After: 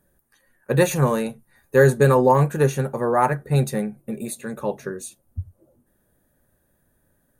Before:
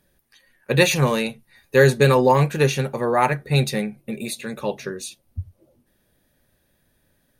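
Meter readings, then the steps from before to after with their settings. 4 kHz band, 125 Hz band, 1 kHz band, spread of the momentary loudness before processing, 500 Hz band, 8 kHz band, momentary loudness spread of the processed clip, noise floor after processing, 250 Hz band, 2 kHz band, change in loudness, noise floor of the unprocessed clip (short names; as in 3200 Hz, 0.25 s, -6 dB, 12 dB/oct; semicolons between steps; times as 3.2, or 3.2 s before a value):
-11.5 dB, 0.0 dB, 0.0 dB, 17 LU, 0.0 dB, -2.5 dB, 18 LU, -67 dBFS, 0.0 dB, -4.5 dB, -0.5 dB, -67 dBFS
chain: band shelf 3400 Hz -11.5 dB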